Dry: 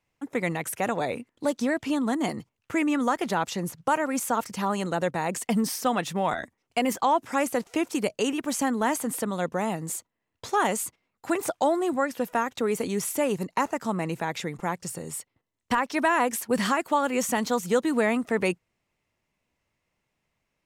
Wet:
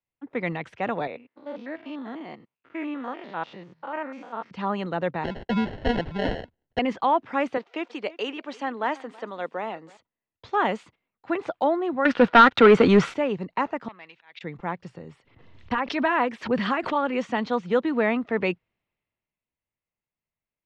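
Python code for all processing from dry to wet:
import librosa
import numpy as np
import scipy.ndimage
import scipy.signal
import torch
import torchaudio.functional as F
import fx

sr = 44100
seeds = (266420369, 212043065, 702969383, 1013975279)

y = fx.chain(x, sr, fx.spec_steps(hold_ms=100),
    fx.highpass(hz=390.0, slope=6),
    fx.air_absorb(metres=63.0), at=(1.07, 4.51))
y = fx.chain(y, sr, fx.lowpass(hz=7100.0, slope=12),
    fx.sample_hold(seeds[0], rate_hz=1200.0, jitter_pct=0), at=(5.24, 6.79))
y = fx.chain(y, sr, fx.highpass(hz=370.0, slope=12),
    fx.echo_single(ms=327, db=-19.0), at=(7.57, 9.97))
y = fx.chain(y, sr, fx.peak_eq(hz=1400.0, db=11.5, octaves=0.35),
    fx.leveller(passes=3), at=(12.05, 13.14))
y = fx.chain(y, sr, fx.bandpass_q(hz=3000.0, q=1.0),
    fx.auto_swell(attack_ms=139.0),
    fx.transformer_sat(knee_hz=1500.0), at=(13.88, 14.41))
y = fx.chain(y, sr, fx.filter_lfo_notch(shape='sine', hz=6.0, low_hz=710.0, high_hz=7400.0, q=2.4),
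    fx.pre_swell(db_per_s=70.0), at=(15.14, 17.18))
y = scipy.signal.sosfilt(scipy.signal.butter(4, 3700.0, 'lowpass', fs=sr, output='sos'), y)
y = fx.band_widen(y, sr, depth_pct=40)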